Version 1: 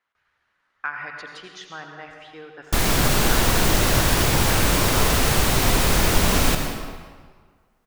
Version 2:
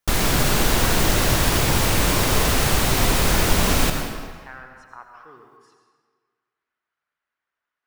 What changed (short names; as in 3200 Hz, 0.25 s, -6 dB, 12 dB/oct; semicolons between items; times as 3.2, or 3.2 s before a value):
speech -7.5 dB; background: entry -2.65 s